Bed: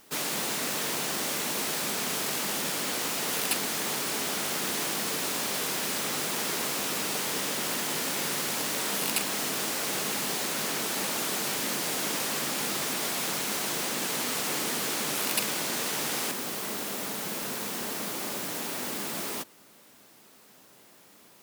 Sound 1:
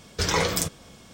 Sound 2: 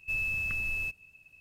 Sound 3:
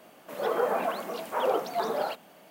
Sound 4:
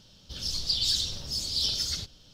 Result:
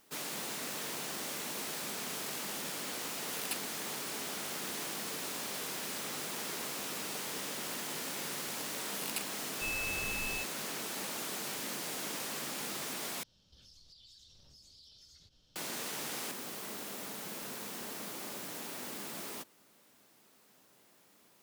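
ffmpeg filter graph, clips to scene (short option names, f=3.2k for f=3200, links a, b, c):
-filter_complex "[0:a]volume=-9dB[a];[4:a]acompressor=threshold=-44dB:ratio=6:attack=3.2:release=140:knee=1:detection=peak[b];[a]asplit=2[c][d];[c]atrim=end=13.234[e];[b]atrim=end=2.33,asetpts=PTS-STARTPTS,volume=-13dB[f];[d]atrim=start=15.556[g];[2:a]atrim=end=1.4,asetpts=PTS-STARTPTS,volume=-6.5dB,afade=t=in:d=0.004:c=hsin,afade=t=out:st=1.396:d=0.004:c=hsin,adelay=9530[h];[e][f]acrossfade=d=0.004:c1=hsin:c2=hsin[i];[i][g]acrossfade=d=0.004:c1=hsin:c2=hsin[j];[j][h]amix=inputs=2:normalize=0"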